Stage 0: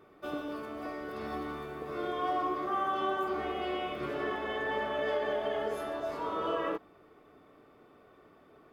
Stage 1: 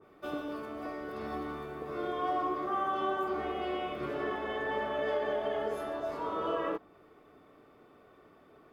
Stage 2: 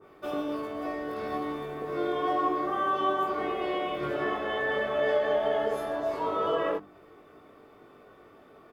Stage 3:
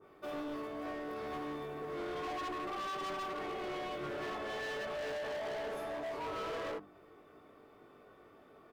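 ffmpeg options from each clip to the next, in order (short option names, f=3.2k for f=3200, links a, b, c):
-af "adynamicequalizer=threshold=0.00447:dfrequency=1600:dqfactor=0.7:tfrequency=1600:tqfactor=0.7:attack=5:release=100:ratio=0.375:range=1.5:mode=cutabove:tftype=highshelf"
-filter_complex "[0:a]bandreject=f=50:t=h:w=6,bandreject=f=100:t=h:w=6,bandreject=f=150:t=h:w=6,bandreject=f=200:t=h:w=6,bandreject=f=250:t=h:w=6,bandreject=f=300:t=h:w=6,asplit=2[a][b];[b]adelay=20,volume=-3dB[c];[a][c]amix=inputs=2:normalize=0,volume=3.5dB"
-af "volume=32dB,asoftclip=hard,volume=-32dB,volume=-5.5dB"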